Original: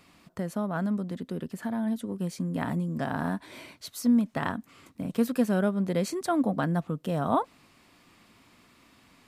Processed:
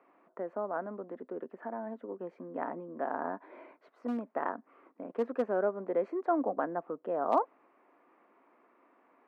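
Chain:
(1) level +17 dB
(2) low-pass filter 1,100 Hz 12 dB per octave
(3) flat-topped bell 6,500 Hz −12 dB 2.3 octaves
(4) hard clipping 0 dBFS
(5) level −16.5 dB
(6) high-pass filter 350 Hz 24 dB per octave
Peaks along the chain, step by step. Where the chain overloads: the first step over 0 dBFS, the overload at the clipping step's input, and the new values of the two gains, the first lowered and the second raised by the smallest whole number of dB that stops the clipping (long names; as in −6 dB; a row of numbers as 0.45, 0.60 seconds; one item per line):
+4.5, +3.5, +3.5, 0.0, −16.5, −14.0 dBFS
step 1, 3.5 dB
step 1 +13 dB, step 5 −12.5 dB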